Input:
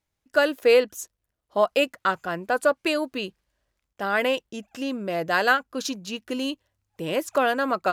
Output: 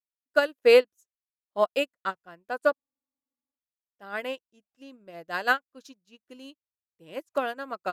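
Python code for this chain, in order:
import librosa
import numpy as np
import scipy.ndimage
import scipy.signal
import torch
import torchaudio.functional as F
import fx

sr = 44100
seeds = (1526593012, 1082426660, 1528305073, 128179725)

y = fx.spec_freeze(x, sr, seeds[0], at_s=2.76, hold_s=0.81)
y = fx.upward_expand(y, sr, threshold_db=-40.0, expansion=2.5)
y = F.gain(torch.from_numpy(y), 1.5).numpy()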